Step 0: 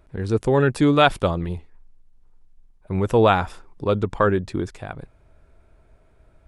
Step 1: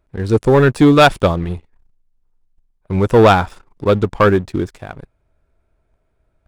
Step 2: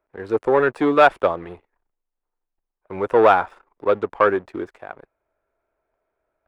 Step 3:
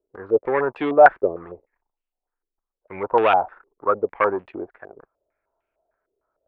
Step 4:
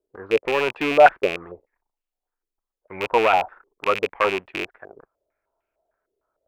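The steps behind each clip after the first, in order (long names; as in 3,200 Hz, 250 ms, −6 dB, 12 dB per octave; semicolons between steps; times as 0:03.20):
leveller curve on the samples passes 2; expander for the loud parts 1.5 to 1, over −24 dBFS; level +2.5 dB
three-way crossover with the lows and the highs turned down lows −21 dB, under 350 Hz, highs −17 dB, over 2,400 Hz; level −2 dB
low-pass on a step sequencer 6.6 Hz 410–2,800 Hz; level −5.5 dB
loose part that buzzes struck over −41 dBFS, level −13 dBFS; level −1 dB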